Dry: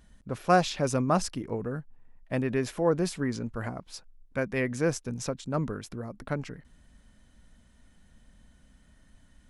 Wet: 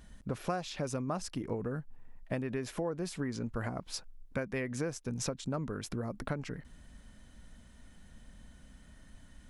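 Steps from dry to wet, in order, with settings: compressor 10:1, threshold -35 dBFS, peak gain reduction 19 dB; gain +3.5 dB

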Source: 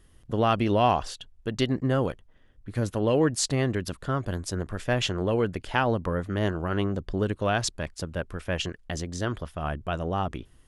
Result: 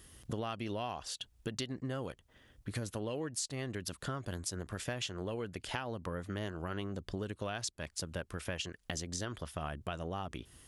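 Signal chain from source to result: HPF 51 Hz; high shelf 2800 Hz +10 dB; compressor 8:1, threshold -37 dBFS, peak gain reduction 21 dB; gain +1 dB

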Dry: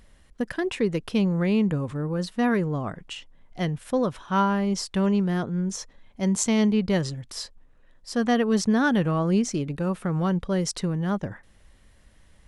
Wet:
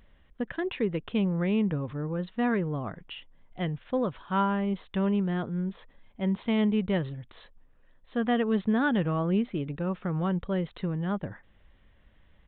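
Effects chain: downsampling 8000 Hz; gain -4 dB

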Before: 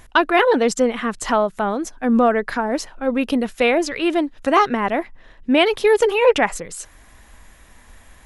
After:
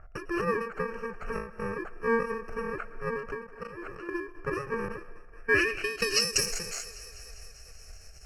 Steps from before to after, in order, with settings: FFT order left unsorted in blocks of 64 samples; on a send at -19.5 dB: reverb RT60 0.50 s, pre-delay 70 ms; 3.46–4.09 on the sum: level quantiser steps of 15 dB; bell 3900 Hz +2.5 dB 2.2 oct; notch 3300 Hz, Q 8; thinning echo 0.2 s, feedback 75%, high-pass 190 Hz, level -21.5 dB; low-pass sweep 1200 Hz -> 6000 Hz, 5.31–6.3; fixed phaser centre 990 Hz, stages 6; ending taper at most 100 dB/s

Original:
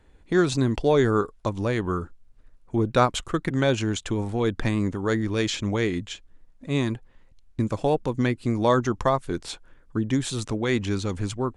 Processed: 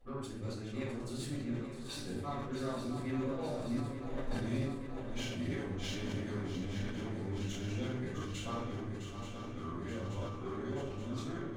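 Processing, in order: whole clip reversed; Doppler pass-by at 4.18, 22 m/s, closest 8.8 m; HPF 48 Hz 6 dB/oct; compressor 5:1, threshold -57 dBFS, peak gain reduction 30.5 dB; resonator 390 Hz, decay 0.2 s, harmonics all, mix 60%; added harmonics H 8 -25 dB, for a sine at -49.5 dBFS; on a send: swung echo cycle 0.878 s, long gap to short 3:1, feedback 72%, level -9 dB; on the sum: shoebox room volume 170 m³, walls mixed, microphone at 5.7 m; sustainer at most 50 dB/s; gain +6.5 dB

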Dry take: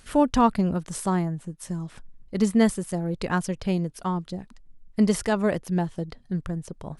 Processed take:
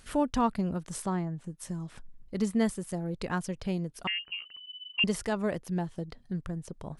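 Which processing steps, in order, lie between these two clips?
in parallel at -0.5 dB: compressor, threshold -34 dBFS, peak gain reduction 18.5 dB; 1.02–1.44 on the sum: air absorption 66 m; 4.07–5.04 inverted band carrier 3000 Hz; gain -8.5 dB

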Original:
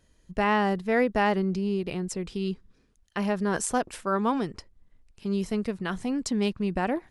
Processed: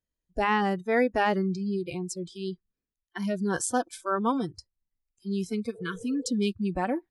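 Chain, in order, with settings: spectral noise reduction 26 dB; spectral repair 5.78–6.28, 420–950 Hz both

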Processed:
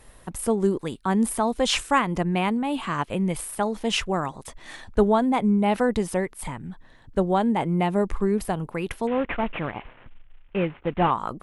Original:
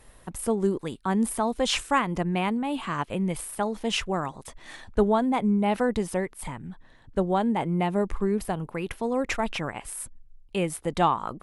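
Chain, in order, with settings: 9.07–11.11 CVSD 16 kbps; gain +2.5 dB

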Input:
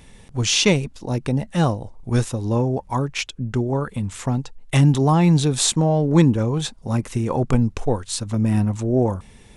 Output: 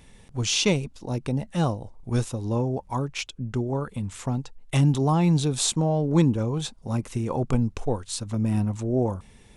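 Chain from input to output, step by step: dynamic EQ 1800 Hz, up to -5 dB, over -46 dBFS, Q 3.2; gain -5 dB

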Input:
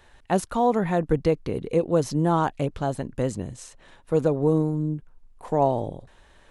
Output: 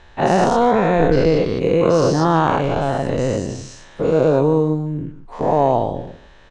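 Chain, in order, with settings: spectral dilation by 0.24 s; LPF 6200 Hz 24 dB/oct; on a send: echo 0.149 s -15 dB; on the sum: gain +2 dB

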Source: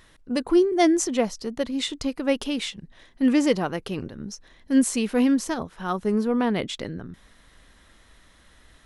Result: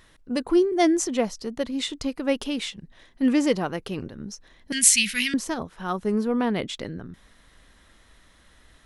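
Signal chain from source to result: 4.72–5.34 EQ curve 200 Hz 0 dB, 320 Hz -24 dB, 840 Hz -24 dB, 2000 Hz +14 dB; gain -1 dB

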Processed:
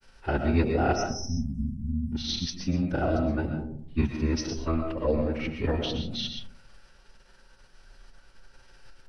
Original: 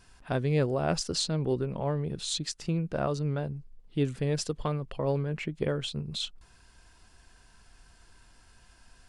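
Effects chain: formant-preserving pitch shift -10.5 st; spectral delete 0.97–2.13, 270–5100 Hz; grains, spray 31 ms, pitch spread up and down by 0 st; reverb RT60 0.65 s, pre-delay 80 ms, DRR 4.5 dB; gain +4 dB

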